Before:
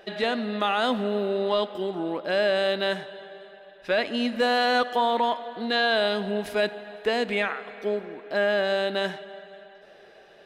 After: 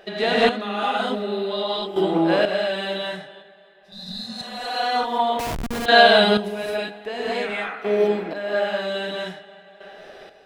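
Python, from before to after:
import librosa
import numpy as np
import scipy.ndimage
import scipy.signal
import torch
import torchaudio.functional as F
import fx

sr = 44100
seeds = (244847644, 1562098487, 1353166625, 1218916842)

y = fx.peak_eq(x, sr, hz=3900.0, db=10.0, octaves=0.42, at=(1.09, 1.62))
y = fx.rev_gated(y, sr, seeds[0], gate_ms=250, shape='rising', drr_db=-7.5)
y = fx.schmitt(y, sr, flips_db=-19.0, at=(5.39, 5.86))
y = fx.chopper(y, sr, hz=0.51, depth_pct=65, duty_pct=25)
y = fx.spec_repair(y, sr, seeds[1], start_s=3.87, length_s=0.94, low_hz=230.0, high_hz=3500.0, source='both')
y = fx.detune_double(y, sr, cents=fx.line((3.41, 15.0), (4.38, 34.0)), at=(3.41, 4.38), fade=0.02)
y = F.gain(torch.from_numpy(y), 1.5).numpy()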